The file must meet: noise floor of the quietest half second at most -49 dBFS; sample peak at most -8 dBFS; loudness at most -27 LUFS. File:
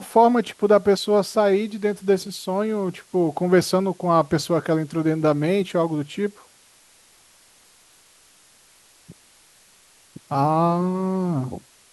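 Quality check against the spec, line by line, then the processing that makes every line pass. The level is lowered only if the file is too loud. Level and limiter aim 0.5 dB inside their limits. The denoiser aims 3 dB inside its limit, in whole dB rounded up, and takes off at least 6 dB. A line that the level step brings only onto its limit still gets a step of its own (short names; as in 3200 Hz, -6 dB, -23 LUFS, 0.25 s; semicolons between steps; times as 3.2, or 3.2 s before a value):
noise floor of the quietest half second -55 dBFS: OK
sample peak -4.0 dBFS: fail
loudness -21.5 LUFS: fail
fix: gain -6 dB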